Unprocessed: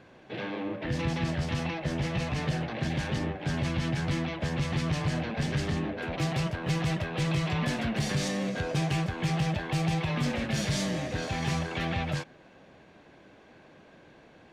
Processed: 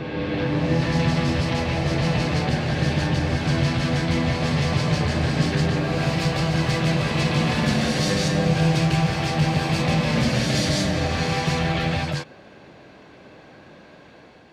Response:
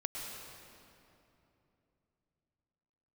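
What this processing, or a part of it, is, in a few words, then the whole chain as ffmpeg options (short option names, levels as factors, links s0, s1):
reverse reverb: -filter_complex "[0:a]highpass=51,equalizer=f=4500:w=3.4:g=5,areverse[s0];[1:a]atrim=start_sample=2205[s1];[s0][s1]afir=irnorm=-1:irlink=0,areverse,volume=2.11"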